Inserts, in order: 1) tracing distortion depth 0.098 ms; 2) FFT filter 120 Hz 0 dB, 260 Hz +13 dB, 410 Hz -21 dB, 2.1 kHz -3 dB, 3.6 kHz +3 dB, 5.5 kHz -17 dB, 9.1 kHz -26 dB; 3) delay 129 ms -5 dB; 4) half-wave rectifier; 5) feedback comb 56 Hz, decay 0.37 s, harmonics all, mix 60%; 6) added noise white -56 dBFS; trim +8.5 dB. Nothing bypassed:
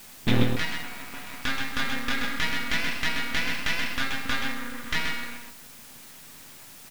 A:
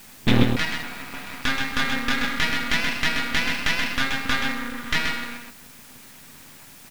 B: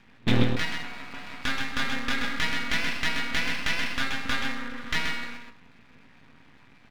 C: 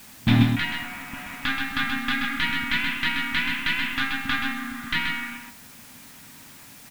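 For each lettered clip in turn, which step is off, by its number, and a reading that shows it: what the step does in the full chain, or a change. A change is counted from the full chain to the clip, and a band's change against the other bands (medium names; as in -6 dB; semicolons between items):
5, momentary loudness spread change +4 LU; 6, 8 kHz band -2.0 dB; 4, distortion -3 dB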